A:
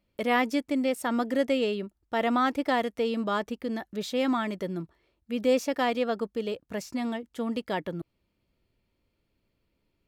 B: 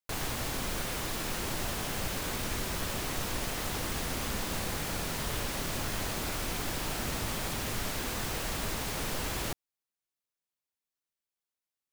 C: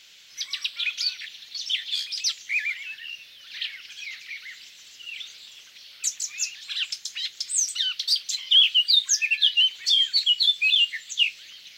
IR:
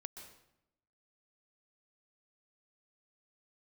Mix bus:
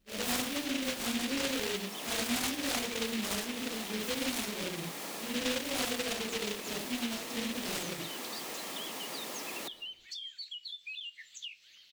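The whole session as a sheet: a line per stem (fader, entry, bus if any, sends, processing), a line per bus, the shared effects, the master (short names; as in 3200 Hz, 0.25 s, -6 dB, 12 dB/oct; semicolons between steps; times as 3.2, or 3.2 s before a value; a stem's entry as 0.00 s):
+2.5 dB, 0.00 s, no send, phase scrambler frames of 0.2 s; noise-modulated delay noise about 2700 Hz, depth 0.3 ms
-3.5 dB, 0.15 s, send -8 dB, HPF 220 Hz 24 dB/oct; notch 1500 Hz, Q 7.8
-13.0 dB, 0.25 s, no send, compressor 6:1, threshold -27 dBFS, peak gain reduction 13.5 dB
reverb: on, RT60 0.85 s, pre-delay 0.118 s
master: compressor 2:1, threshold -39 dBFS, peak gain reduction 12.5 dB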